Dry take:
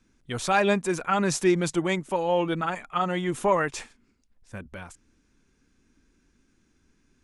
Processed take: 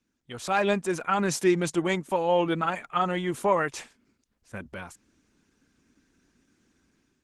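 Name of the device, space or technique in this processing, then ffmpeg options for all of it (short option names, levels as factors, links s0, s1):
video call: -af "highpass=f=120:p=1,dynaudnorm=f=180:g=5:m=3.76,volume=0.355" -ar 48000 -c:a libopus -b:a 16k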